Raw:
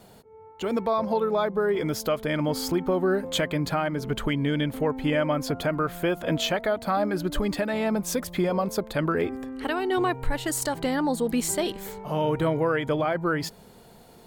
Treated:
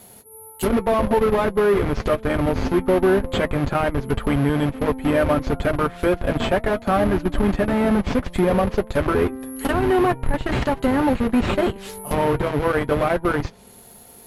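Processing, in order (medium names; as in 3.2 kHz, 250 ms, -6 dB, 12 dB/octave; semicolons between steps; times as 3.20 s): careless resampling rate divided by 4×, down none, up zero stuff; in parallel at -3 dB: Schmitt trigger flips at -12.5 dBFS; on the sum: low-pass that closes with the level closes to 2.4 kHz, closed at -15.5 dBFS; comb of notches 160 Hz; trim +2.5 dB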